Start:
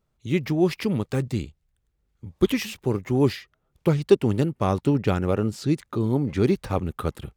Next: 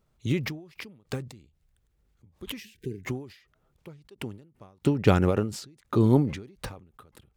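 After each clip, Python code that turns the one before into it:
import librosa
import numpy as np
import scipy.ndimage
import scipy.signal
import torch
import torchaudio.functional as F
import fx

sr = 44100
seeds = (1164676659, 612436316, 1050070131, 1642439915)

y = fx.spec_erase(x, sr, start_s=2.61, length_s=0.45, low_hz=470.0, high_hz=1500.0)
y = fx.end_taper(y, sr, db_per_s=110.0)
y = y * 10.0 ** (3.5 / 20.0)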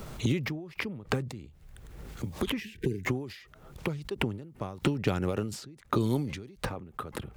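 y = fx.band_squash(x, sr, depth_pct=100)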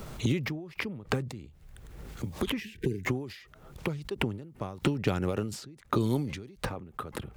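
y = x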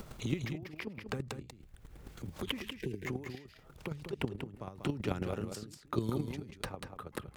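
y = fx.chopper(x, sr, hz=9.2, depth_pct=65, duty_pct=10)
y = y + 10.0 ** (-7.0 / 20.0) * np.pad(y, (int(190 * sr / 1000.0), 0))[:len(y)]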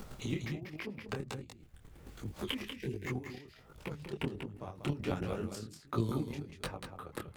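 y = fx.detune_double(x, sr, cents=46)
y = y * 10.0 ** (3.5 / 20.0)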